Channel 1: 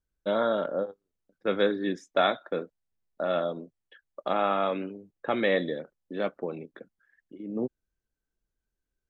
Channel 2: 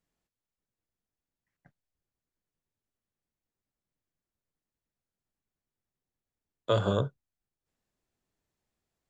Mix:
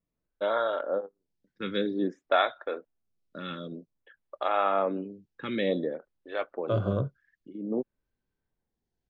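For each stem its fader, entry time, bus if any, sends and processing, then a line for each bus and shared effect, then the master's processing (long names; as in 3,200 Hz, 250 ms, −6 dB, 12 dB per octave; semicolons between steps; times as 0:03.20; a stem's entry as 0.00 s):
+1.5 dB, 0.15 s, no send, phaser with staggered stages 0.53 Hz
+1.0 dB, 0.00 s, no send, low-pass filter 1,000 Hz 6 dB per octave; phaser whose notches keep moving one way falling 0.27 Hz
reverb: not used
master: low-pass filter 5,800 Hz 24 dB per octave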